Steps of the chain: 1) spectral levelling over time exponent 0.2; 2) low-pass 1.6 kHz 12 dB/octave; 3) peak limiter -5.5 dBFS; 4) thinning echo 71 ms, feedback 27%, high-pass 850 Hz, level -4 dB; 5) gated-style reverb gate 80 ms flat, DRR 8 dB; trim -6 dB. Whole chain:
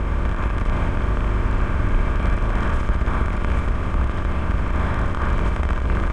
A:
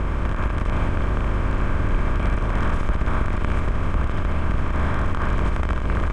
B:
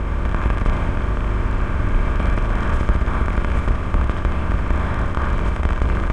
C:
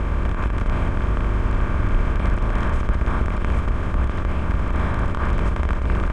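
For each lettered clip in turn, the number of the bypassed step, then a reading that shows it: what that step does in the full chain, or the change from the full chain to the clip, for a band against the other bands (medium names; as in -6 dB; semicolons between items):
5, echo-to-direct -3.0 dB to -5.5 dB; 3, loudness change +1.5 LU; 4, echo-to-direct -3.0 dB to -8.0 dB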